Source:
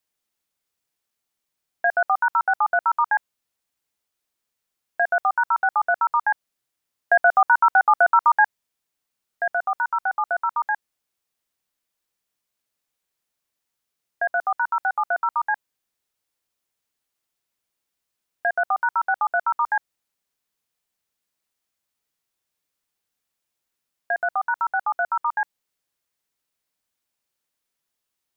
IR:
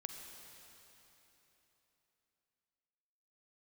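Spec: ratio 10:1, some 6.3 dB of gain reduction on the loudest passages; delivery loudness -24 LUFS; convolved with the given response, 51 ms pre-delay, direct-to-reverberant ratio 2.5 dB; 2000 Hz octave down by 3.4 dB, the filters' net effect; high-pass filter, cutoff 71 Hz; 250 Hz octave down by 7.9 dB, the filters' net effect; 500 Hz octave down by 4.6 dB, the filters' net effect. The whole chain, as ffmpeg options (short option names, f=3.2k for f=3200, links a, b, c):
-filter_complex "[0:a]highpass=71,equalizer=f=250:t=o:g=-8.5,equalizer=f=500:t=o:g=-6.5,equalizer=f=2k:t=o:g=-4.5,acompressor=threshold=-21dB:ratio=10,asplit=2[a][b];[1:a]atrim=start_sample=2205,adelay=51[c];[b][c]afir=irnorm=-1:irlink=0,volume=0dB[d];[a][d]amix=inputs=2:normalize=0,volume=3dB"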